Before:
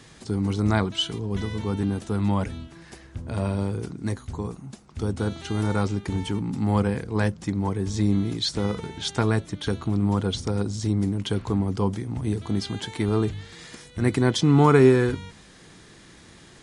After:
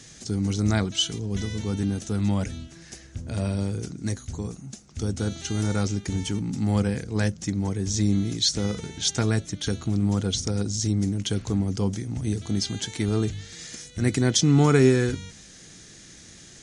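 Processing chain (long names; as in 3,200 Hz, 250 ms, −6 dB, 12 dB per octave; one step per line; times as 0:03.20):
graphic EQ with 15 bands 400 Hz −3 dB, 1,000 Hz −10 dB, 6,300 Hz +12 dB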